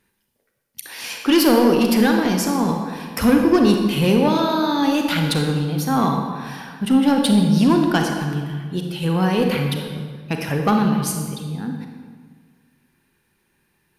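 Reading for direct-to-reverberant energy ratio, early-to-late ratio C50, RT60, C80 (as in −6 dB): 2.5 dB, 3.5 dB, 1.7 s, 5.0 dB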